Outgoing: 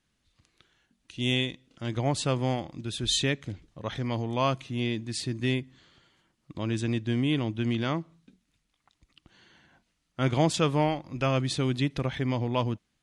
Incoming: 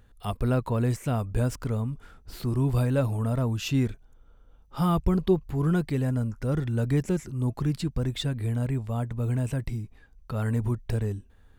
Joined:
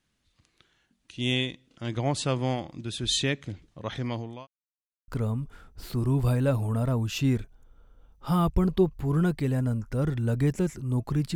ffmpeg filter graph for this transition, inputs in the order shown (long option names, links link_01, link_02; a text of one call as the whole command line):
ffmpeg -i cue0.wav -i cue1.wav -filter_complex "[0:a]apad=whole_dur=11.35,atrim=end=11.35,asplit=2[link_01][link_02];[link_01]atrim=end=4.47,asetpts=PTS-STARTPTS,afade=type=out:start_time=4.06:duration=0.41[link_03];[link_02]atrim=start=4.47:end=5.08,asetpts=PTS-STARTPTS,volume=0[link_04];[1:a]atrim=start=1.58:end=7.85,asetpts=PTS-STARTPTS,afade=type=in:duration=0.004:curve=hsin[link_05];[link_03][link_04][link_05]concat=n=3:v=0:a=1" out.wav